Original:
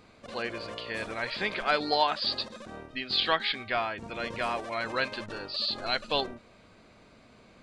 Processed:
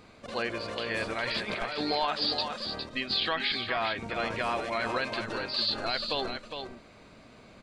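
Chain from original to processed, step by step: limiter -21.5 dBFS, peak gain reduction 9.5 dB; 1.27–1.79 negative-ratio compressor -36 dBFS, ratio -0.5; echo 0.409 s -7 dB; gain +2.5 dB

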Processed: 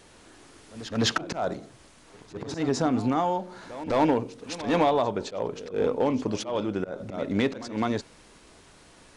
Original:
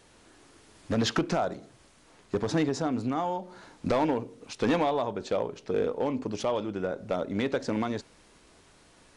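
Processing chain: auto swell 0.163 s; pre-echo 0.209 s -15.5 dB; gain +4.5 dB

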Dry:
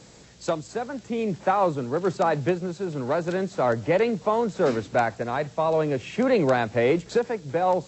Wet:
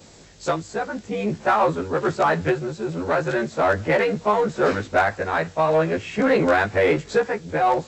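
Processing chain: short-time reversal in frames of 38 ms; dynamic EQ 1600 Hz, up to +8 dB, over -44 dBFS, Q 1.2; in parallel at -6 dB: hard clip -24.5 dBFS, distortion -8 dB; on the sum: gain +2 dB

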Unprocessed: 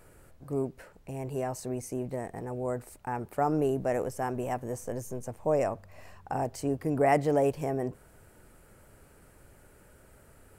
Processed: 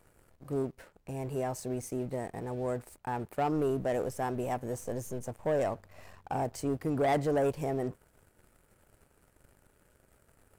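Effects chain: sample leveller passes 2; gain -8 dB

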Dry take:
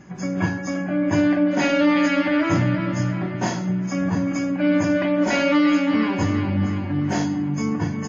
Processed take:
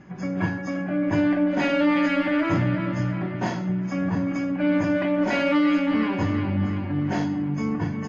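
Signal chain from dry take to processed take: LPF 3900 Hz 12 dB/oct; in parallel at -11 dB: one-sided clip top -27.5 dBFS, bottom -14 dBFS; on the sum: gain -4 dB

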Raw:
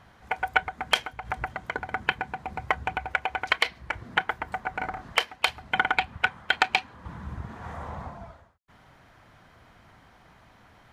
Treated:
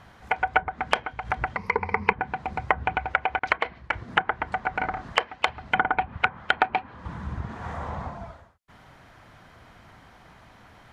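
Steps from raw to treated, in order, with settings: 1.56–2.13 ripple EQ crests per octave 0.86, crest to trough 17 dB; 3.39–4.08 expander -37 dBFS; treble ducked by the level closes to 1200 Hz, closed at -22 dBFS; gain +4 dB

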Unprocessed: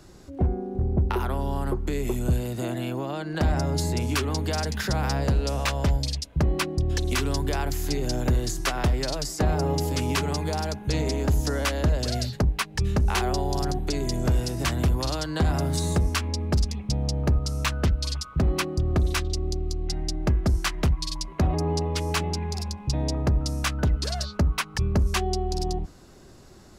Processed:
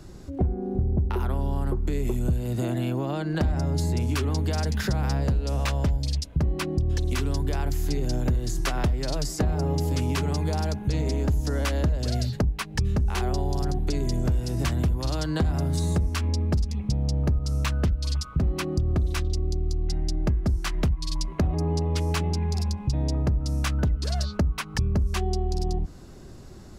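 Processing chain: low shelf 300 Hz +8 dB; compressor 4:1, threshold -22 dBFS, peak gain reduction 10 dB

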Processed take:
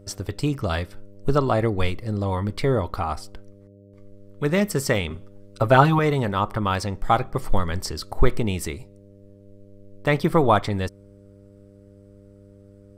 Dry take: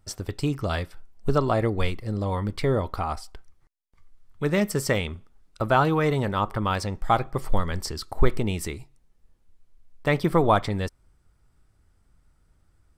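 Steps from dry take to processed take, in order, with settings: 5.1–5.99 comb 7.4 ms, depth 98%; buzz 100 Hz, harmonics 6, -51 dBFS -3 dB/oct; gain +2 dB

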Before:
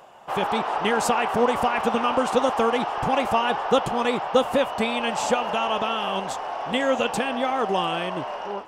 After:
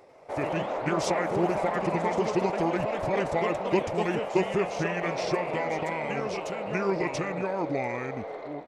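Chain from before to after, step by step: pitch shift -5.5 st; echoes that change speed 96 ms, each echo +2 st, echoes 3, each echo -6 dB; gain -5.5 dB

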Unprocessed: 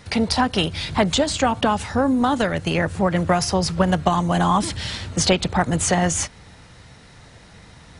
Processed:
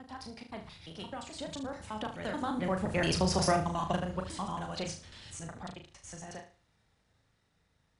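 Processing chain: slices in reverse order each 89 ms, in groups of 6; Doppler pass-by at 3.23, 10 m/s, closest 3.8 m; flutter echo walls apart 6.4 m, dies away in 0.37 s; gain -8 dB

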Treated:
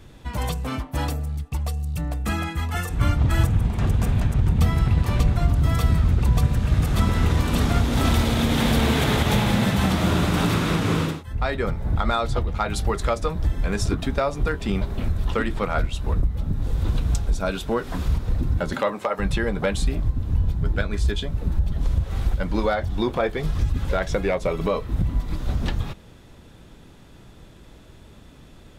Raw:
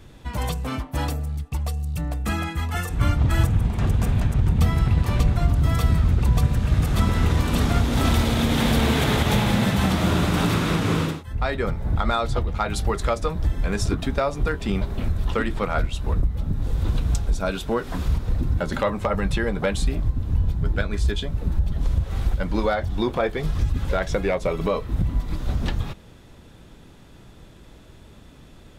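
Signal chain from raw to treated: 18.73–19.18 HPF 160 Hz -> 440 Hz 12 dB/oct

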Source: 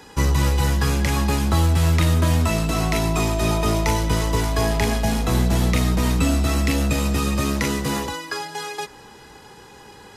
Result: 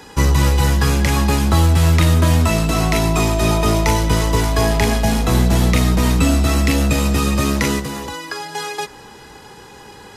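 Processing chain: 7.79–8.54 compressor 5:1, threshold -28 dBFS, peak gain reduction 8 dB; gain +4.5 dB

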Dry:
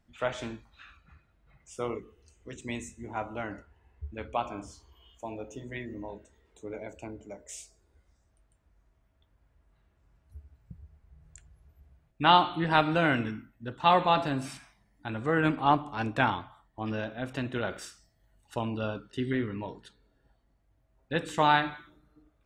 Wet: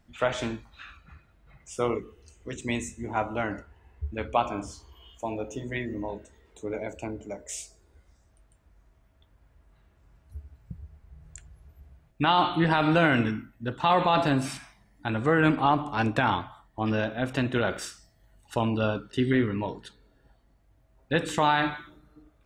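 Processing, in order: limiter -18 dBFS, peak gain reduction 10.5 dB; gain +6.5 dB

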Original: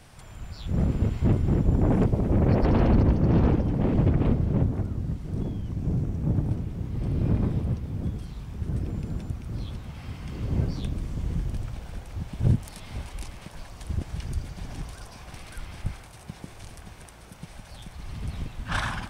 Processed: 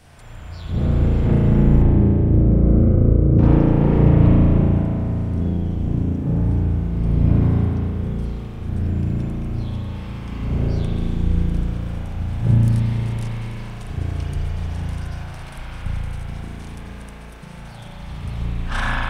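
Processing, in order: 1.82–3.39 running mean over 50 samples; spring tank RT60 3 s, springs 35 ms, chirp 65 ms, DRR -6.5 dB

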